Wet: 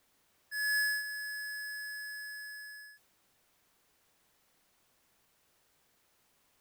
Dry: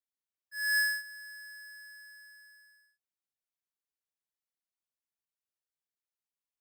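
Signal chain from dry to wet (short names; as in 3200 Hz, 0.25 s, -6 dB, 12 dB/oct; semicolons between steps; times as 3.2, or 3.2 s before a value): power-law curve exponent 0.5; mismatched tape noise reduction decoder only; gain -3.5 dB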